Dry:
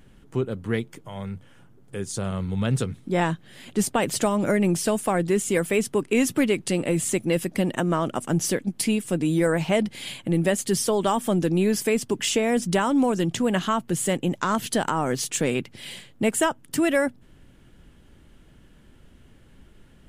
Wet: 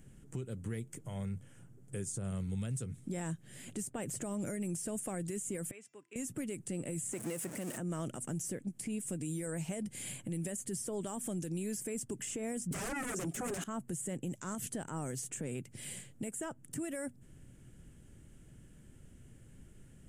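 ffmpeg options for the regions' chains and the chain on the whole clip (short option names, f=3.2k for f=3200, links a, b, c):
-filter_complex "[0:a]asettb=1/sr,asplit=3[a][b][c];[a]atrim=end=5.714[d];[b]atrim=start=5.71:end=6.16,asetpts=PTS-STARTPTS,afade=t=in:d=0.004:c=qsin,afade=t=out:st=0.446:d=0.004:c=qsin,lowpass=1.9k,aderivative,bandreject=f=338.1:t=h:w=4,bandreject=f=676.2:t=h:w=4,bandreject=f=1.0143k:t=h:w=4,bandreject=f=1.3524k:t=h:w=4,bandreject=f=1.6905k:t=h:w=4,bandreject=f=2.0286k:t=h:w=4,bandreject=f=2.3667k:t=h:w=4,bandreject=f=2.7048k:t=h:w=4,bandreject=f=3.0429k:t=h:w=4,bandreject=f=3.381k:t=h:w=4,bandreject=f=3.7191k:t=h:w=4,bandreject=f=4.0572k:t=h:w=4,bandreject=f=4.3953k:t=h:w=4,bandreject=f=4.7334k:t=h:w=4,bandreject=f=5.0715k:t=h:w=4,bandreject=f=5.4096k:t=h:w=4,bandreject=f=5.7477k:t=h:w=4,bandreject=f=6.0858k:t=h:w=4,bandreject=f=6.4239k:t=h:w=4,bandreject=f=6.762k:t=h:w=4,bandreject=f=7.1001k:t=h:w=4[e];[c]atrim=start=6.156[f];[d][e]acrossfade=d=0.004:c1=hsin:c2=qsin[g];[g][f]acrossfade=d=0.004:c1=qsin:c2=hsin,asettb=1/sr,asplit=3[h][i][j];[h]atrim=end=7.134[k];[i]atrim=start=7.13:end=7.78,asetpts=PTS-STARTPTS,afade=t=in:d=0.004:c=qsin,afade=t=out:st=0.646:d=0.004:c=qsin,aeval=exprs='val(0)+0.5*0.0596*sgn(val(0))':c=same,highpass=f=530:p=1[l];[j]atrim=start=7.776[m];[k][l]acrossfade=d=0.004:c1=hsin:c2=qsin[n];[n][m]acrossfade=d=0.004:c1=qsin:c2=hsin,asettb=1/sr,asplit=3[o][p][q];[o]atrim=end=12.714[r];[p]atrim=start=12.71:end=13.64,asetpts=PTS-STARTPTS,afade=t=in:d=0.004:c=qsin,afade=t=out:st=0.926:d=0.004:c=qsin,highpass=f=250:w=0.5412,highpass=f=250:w=1.3066,aecho=1:1:7.3:0.72,atrim=end_sample=41013,aeval=exprs='0.355*sin(PI/2*7.08*val(0)/0.355)':c=same[s];[q]atrim=start=13.636[t];[r][s]acrossfade=d=0.004:c1=hsin:c2=qsin[u];[u][t]acrossfade=d=0.004:c1=qsin:c2=hsin,equalizer=f=125:t=o:w=1:g=7,equalizer=f=1k:t=o:w=1:g=-7,equalizer=f=4k:t=o:w=1:g=-9,equalizer=f=8k:t=o:w=1:g=12,acrossover=split=2100|6300[v][w][x];[v]acompressor=threshold=-29dB:ratio=4[y];[w]acompressor=threshold=-48dB:ratio=4[z];[x]acompressor=threshold=-35dB:ratio=4[aa];[y][z][aa]amix=inputs=3:normalize=0,alimiter=limit=-24dB:level=0:latency=1:release=77,volume=-6dB"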